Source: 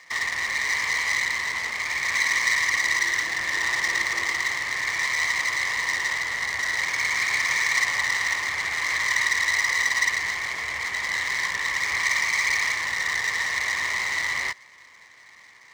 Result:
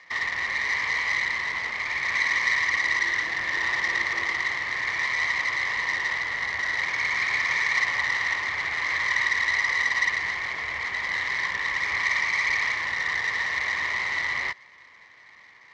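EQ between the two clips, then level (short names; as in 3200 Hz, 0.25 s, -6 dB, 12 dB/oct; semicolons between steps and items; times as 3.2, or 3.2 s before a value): LPF 4900 Hz 12 dB/oct; air absorption 72 m; 0.0 dB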